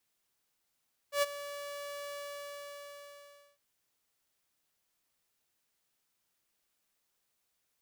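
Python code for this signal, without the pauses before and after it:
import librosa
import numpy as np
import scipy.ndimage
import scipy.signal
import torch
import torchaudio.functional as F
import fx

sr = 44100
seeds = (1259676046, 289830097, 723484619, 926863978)

y = fx.adsr_tone(sr, wave='saw', hz=574.0, attack_ms=104.0, decay_ms=27.0, sustain_db=-15.5, held_s=1.01, release_ms=1450.0, level_db=-22.0)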